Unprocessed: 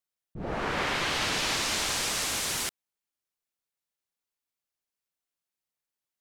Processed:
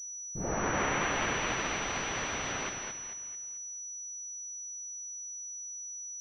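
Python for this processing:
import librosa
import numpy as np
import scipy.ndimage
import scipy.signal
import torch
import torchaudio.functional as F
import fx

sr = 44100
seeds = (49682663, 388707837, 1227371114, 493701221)

p1 = fx.rider(x, sr, range_db=10, speed_s=2.0)
p2 = p1 + fx.echo_feedback(p1, sr, ms=221, feedback_pct=38, wet_db=-5.0, dry=0)
p3 = fx.pwm(p2, sr, carrier_hz=5900.0)
y = p3 * 10.0 ** (-2.0 / 20.0)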